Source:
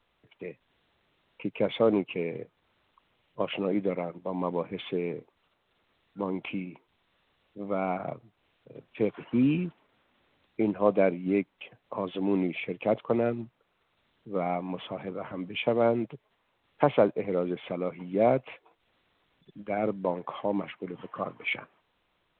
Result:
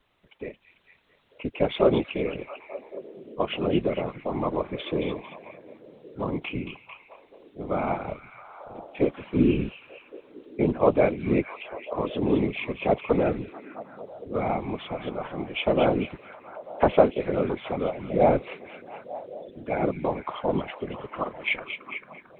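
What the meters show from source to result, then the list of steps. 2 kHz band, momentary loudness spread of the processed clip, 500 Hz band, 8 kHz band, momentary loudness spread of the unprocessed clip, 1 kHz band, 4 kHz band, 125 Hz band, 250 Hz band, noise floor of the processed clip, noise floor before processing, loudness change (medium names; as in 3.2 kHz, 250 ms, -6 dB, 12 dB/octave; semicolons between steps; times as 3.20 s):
+4.0 dB, 19 LU, +3.5 dB, no reading, 15 LU, +4.5 dB, +4.5 dB, +5.0 dB, +2.5 dB, -58 dBFS, -74 dBFS, +3.0 dB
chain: whisper effect; repeats whose band climbs or falls 223 ms, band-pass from 3.3 kHz, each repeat -0.7 oct, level -6 dB; trim +3 dB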